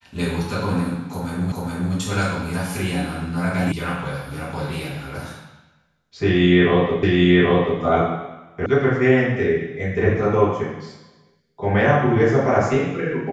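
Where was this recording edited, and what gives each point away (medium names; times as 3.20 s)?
1.52 s: repeat of the last 0.42 s
3.72 s: sound stops dead
7.03 s: repeat of the last 0.78 s
8.66 s: sound stops dead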